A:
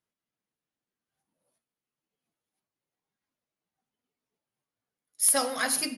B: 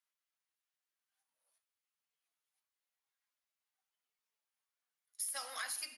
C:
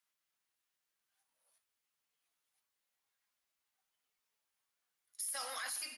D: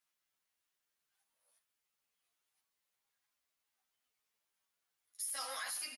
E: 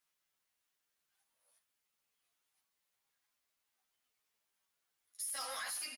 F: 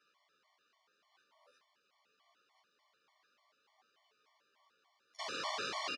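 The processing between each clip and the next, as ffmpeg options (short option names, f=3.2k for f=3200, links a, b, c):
-af "highpass=1.1k,alimiter=limit=-17.5dB:level=0:latency=1,acompressor=threshold=-38dB:ratio=5,volume=-1dB"
-af "alimiter=level_in=12dB:limit=-24dB:level=0:latency=1:release=13,volume=-12dB,volume=4.5dB"
-filter_complex "[0:a]asplit=2[a][b];[b]adelay=10.5,afreqshift=1.6[c];[a][c]amix=inputs=2:normalize=1,volume=3dB"
-af "asoftclip=type=tanh:threshold=-35dB,volume=1.5dB"
-af "aeval=exprs='(mod(133*val(0)+1,2)-1)/133':c=same,highpass=200,equalizer=f=430:t=q:w=4:g=6,equalizer=f=630:t=q:w=4:g=6,equalizer=f=1.1k:t=q:w=4:g=10,lowpass=f=5k:w=0.5412,lowpass=f=5k:w=1.3066,afftfilt=real='re*gt(sin(2*PI*3.4*pts/sr)*(1-2*mod(floor(b*sr/1024/590),2)),0)':imag='im*gt(sin(2*PI*3.4*pts/sr)*(1-2*mod(floor(b*sr/1024/590),2)),0)':win_size=1024:overlap=0.75,volume=14.5dB"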